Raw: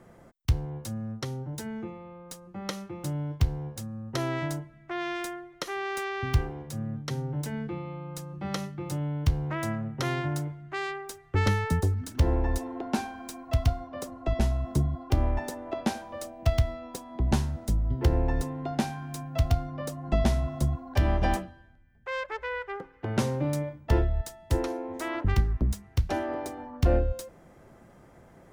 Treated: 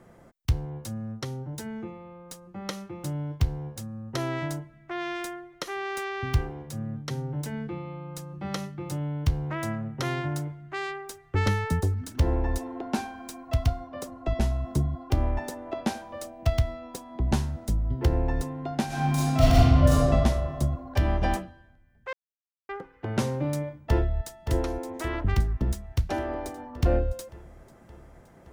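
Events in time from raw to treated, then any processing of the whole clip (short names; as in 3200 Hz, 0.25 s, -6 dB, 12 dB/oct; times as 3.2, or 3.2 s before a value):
18.86–20.07 reverb throw, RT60 1.9 s, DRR -11.5 dB
22.13–22.69 mute
23.89–24.33 echo throw 0.57 s, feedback 70%, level -8 dB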